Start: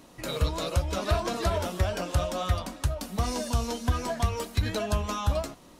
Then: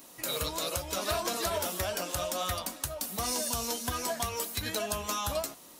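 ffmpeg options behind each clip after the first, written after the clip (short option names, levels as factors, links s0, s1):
-filter_complex "[0:a]aemphasis=mode=production:type=bsi,asplit=2[s0][s1];[s1]alimiter=limit=0.126:level=0:latency=1:release=111,volume=1.26[s2];[s0][s2]amix=inputs=2:normalize=0,volume=0.376"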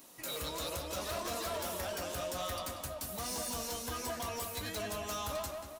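-filter_complex "[0:a]asoftclip=type=hard:threshold=0.0282,asplit=2[s0][s1];[s1]adelay=186,lowpass=f=2800:p=1,volume=0.631,asplit=2[s2][s3];[s3]adelay=186,lowpass=f=2800:p=1,volume=0.48,asplit=2[s4][s5];[s5]adelay=186,lowpass=f=2800:p=1,volume=0.48,asplit=2[s6][s7];[s7]adelay=186,lowpass=f=2800:p=1,volume=0.48,asplit=2[s8][s9];[s9]adelay=186,lowpass=f=2800:p=1,volume=0.48,asplit=2[s10][s11];[s11]adelay=186,lowpass=f=2800:p=1,volume=0.48[s12];[s0][s2][s4][s6][s8][s10][s12]amix=inputs=7:normalize=0,volume=0.596"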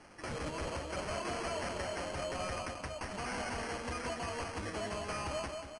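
-af "acrusher=samples=12:mix=1:aa=0.000001,aresample=22050,aresample=44100"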